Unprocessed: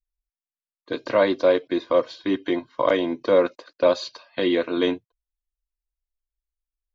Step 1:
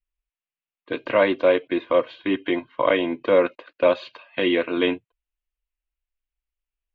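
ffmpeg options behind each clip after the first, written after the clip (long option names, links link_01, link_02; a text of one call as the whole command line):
ffmpeg -i in.wav -af "highshelf=frequency=3900:width_type=q:width=3:gain=-12.5" out.wav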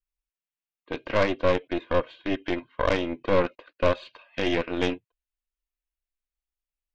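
ffmpeg -i in.wav -af "aeval=exprs='0.473*(cos(1*acos(clip(val(0)/0.473,-1,1)))-cos(1*PI/2))+0.119*(cos(4*acos(clip(val(0)/0.473,-1,1)))-cos(4*PI/2))':channel_layout=same,volume=-5.5dB" out.wav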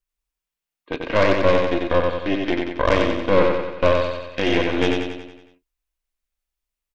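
ffmpeg -i in.wav -af "aecho=1:1:92|184|276|368|460|552|644:0.668|0.361|0.195|0.105|0.0568|0.0307|0.0166,volume=4.5dB" out.wav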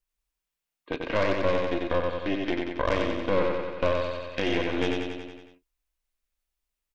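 ffmpeg -i in.wav -af "acompressor=threshold=-34dB:ratio=1.5" out.wav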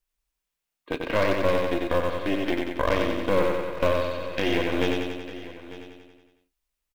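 ffmpeg -i in.wav -filter_complex "[0:a]asplit=2[link_01][link_02];[link_02]acrusher=bits=3:mode=log:mix=0:aa=0.000001,volume=-11.5dB[link_03];[link_01][link_03]amix=inputs=2:normalize=0,aecho=1:1:897:0.15" out.wav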